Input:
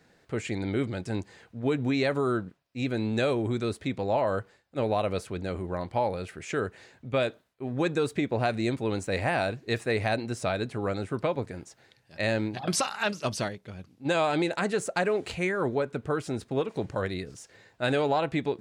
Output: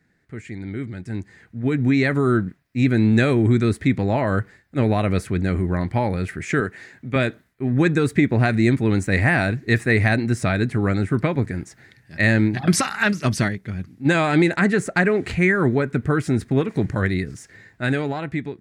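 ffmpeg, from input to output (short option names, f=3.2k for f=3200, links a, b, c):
-filter_complex "[0:a]asettb=1/sr,asplit=3[a][b][c];[a]atrim=end=6.604[d];[b]atrim=start=6.6:end=7.16,asetpts=PTS-STARTPTS,afade=t=in:d=0.004:c=qsin,afade=t=out:st=0.556:d=0.004:c=qsin,highpass=f=240:p=1[e];[c]atrim=start=7.156[f];[d][e]acrossfade=d=0.004:c1=hsin:c2=qsin[g];[g][f]acrossfade=d=0.004:c1=qsin:c2=hsin,asettb=1/sr,asplit=3[h][i][j];[h]atrim=end=14.534[k];[i]atrim=start=14.53:end=15.49,asetpts=PTS-STARTPTS,afade=t=in:d=0.004:c=qsin,afade=t=out:st=0.956:d=0.004:c=qsin,highshelf=f=6.1k:g=-6.5[l];[j]atrim=start=15.486[m];[k][l]acrossfade=d=0.004:c1=hsin:c2=qsin[n];[n][m]acrossfade=d=0.004:c1=qsin:c2=hsin,firequalizer=gain_entry='entry(180,0);entry(610,-7);entry(920,-11);entry(1900,1);entry(2800,-11);entry(11000,-6)':delay=0.05:min_phase=1,dynaudnorm=f=490:g=7:m=15dB,equalizer=f=520:w=2.2:g=-7.5"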